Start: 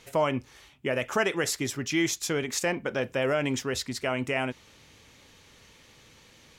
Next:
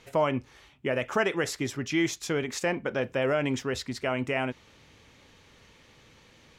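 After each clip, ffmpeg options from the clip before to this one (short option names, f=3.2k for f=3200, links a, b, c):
-af "aemphasis=mode=reproduction:type=cd"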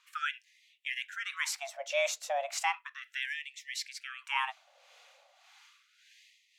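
-filter_complex "[0:a]afreqshift=280,acrossover=split=750[a][b];[a]aeval=exprs='val(0)*(1-0.7/2+0.7/2*cos(2*PI*1.7*n/s))':c=same[c];[b]aeval=exprs='val(0)*(1-0.7/2-0.7/2*cos(2*PI*1.7*n/s))':c=same[d];[c][d]amix=inputs=2:normalize=0,afftfilt=real='re*gte(b*sr/1024,470*pow(1800/470,0.5+0.5*sin(2*PI*0.35*pts/sr)))':imag='im*gte(b*sr/1024,470*pow(1800/470,0.5+0.5*sin(2*PI*0.35*pts/sr)))':win_size=1024:overlap=0.75"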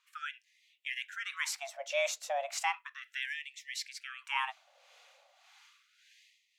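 -af "dynaudnorm=f=240:g=5:m=5.5dB,volume=-7dB"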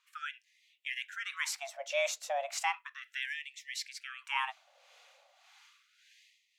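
-af anull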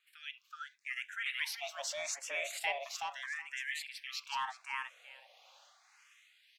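-filter_complex "[0:a]acrossover=split=1400|5700[a][b][c];[a]asoftclip=type=tanh:threshold=-35dB[d];[d][b][c]amix=inputs=3:normalize=0,aecho=1:1:374|748|1122:0.708|0.106|0.0159,asplit=2[e][f];[f]afreqshift=0.79[g];[e][g]amix=inputs=2:normalize=1,volume=1dB"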